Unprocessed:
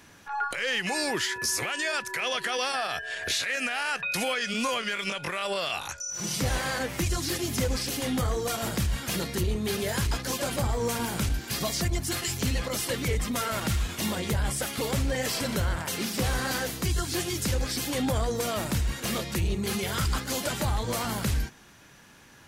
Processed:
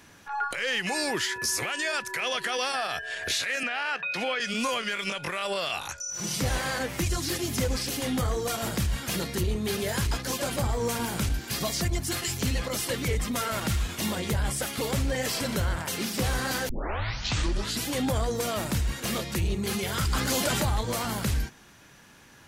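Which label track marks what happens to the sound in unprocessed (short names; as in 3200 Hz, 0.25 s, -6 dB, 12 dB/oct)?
3.630000	4.400000	three-band isolator lows -15 dB, under 180 Hz, highs -19 dB, over 4700 Hz
16.690000	16.690000	tape start 1.20 s
20.130000	20.810000	fast leveller amount 70%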